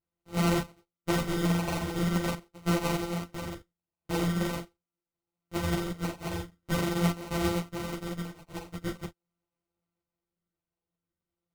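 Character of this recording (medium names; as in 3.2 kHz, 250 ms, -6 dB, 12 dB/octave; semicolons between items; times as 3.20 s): a buzz of ramps at a fixed pitch in blocks of 256 samples; phasing stages 12, 0.44 Hz, lowest notch 570–3000 Hz; aliases and images of a low sample rate 1.7 kHz, jitter 0%; a shimmering, thickened sound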